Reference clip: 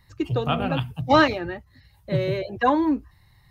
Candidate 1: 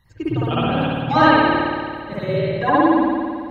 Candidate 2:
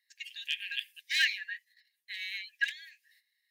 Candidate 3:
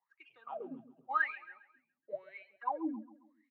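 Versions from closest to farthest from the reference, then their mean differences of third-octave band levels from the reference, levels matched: 1, 3, 2; 8.5, 13.0, 22.0 dB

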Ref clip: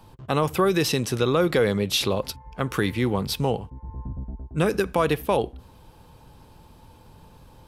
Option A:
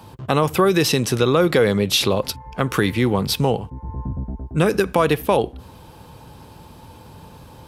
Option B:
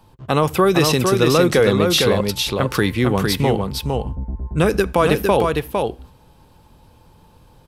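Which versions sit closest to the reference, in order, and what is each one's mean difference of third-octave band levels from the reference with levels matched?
A, B; 1.5, 5.5 dB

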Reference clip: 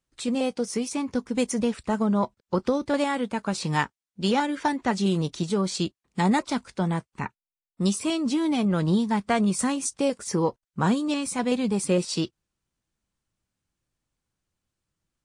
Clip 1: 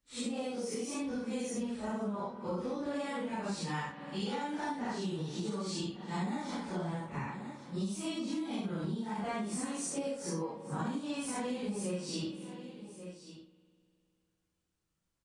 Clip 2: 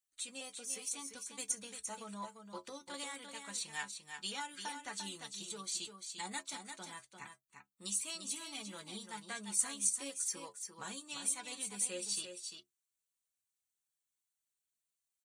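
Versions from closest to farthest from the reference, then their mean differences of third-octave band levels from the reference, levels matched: 1, 2; 7.0, 9.5 dB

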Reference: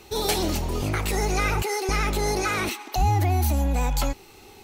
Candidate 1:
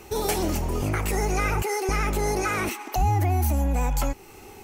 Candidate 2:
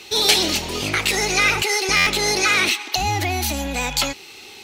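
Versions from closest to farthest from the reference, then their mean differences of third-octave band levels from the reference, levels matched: 1, 2; 1.5, 4.5 dB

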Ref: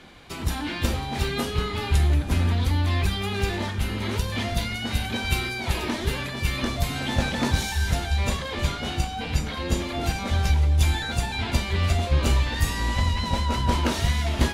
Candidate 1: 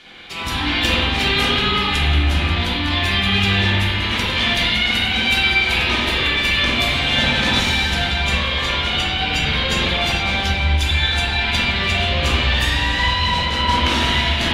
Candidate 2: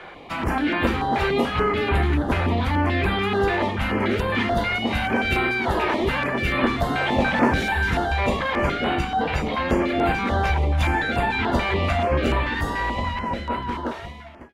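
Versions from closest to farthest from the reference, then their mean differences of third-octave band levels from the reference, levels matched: 1, 2; 5.5, 7.5 dB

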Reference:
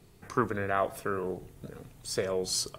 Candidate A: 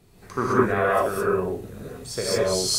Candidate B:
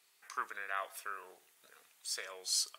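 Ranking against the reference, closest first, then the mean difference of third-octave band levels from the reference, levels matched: A, B; 7.0, 11.5 dB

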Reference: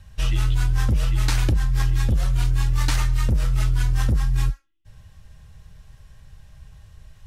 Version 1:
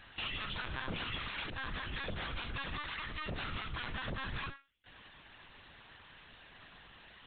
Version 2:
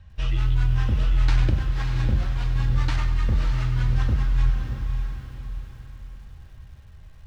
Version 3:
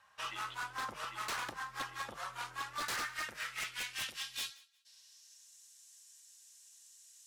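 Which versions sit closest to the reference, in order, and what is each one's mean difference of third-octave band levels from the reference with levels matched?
2, 3, 1; 5.0, 9.5, 13.0 dB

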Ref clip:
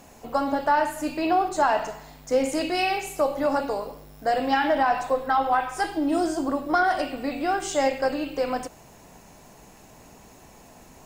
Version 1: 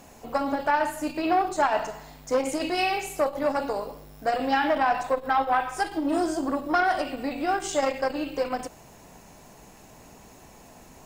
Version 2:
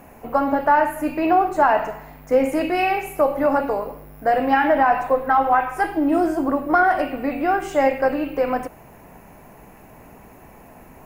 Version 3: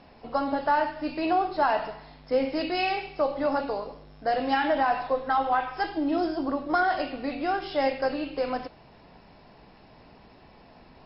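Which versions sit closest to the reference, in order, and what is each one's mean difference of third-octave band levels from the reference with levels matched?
1, 2, 3; 1.5, 3.0, 4.0 dB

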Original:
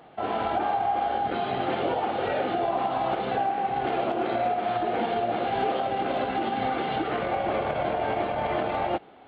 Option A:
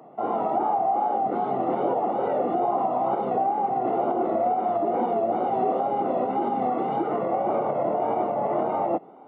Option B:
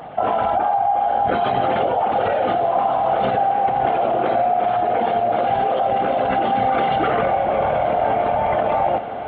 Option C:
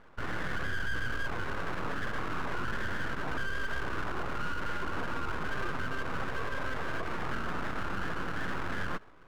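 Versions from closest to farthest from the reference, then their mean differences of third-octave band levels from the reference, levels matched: B, A, C; 3.5, 5.0, 10.0 dB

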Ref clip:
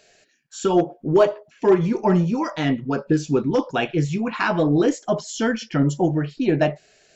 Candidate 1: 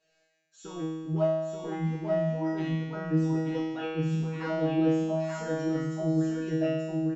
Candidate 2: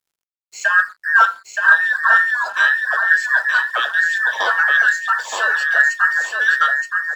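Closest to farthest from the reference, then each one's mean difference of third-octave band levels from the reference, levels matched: 1, 2; 9.5, 16.5 dB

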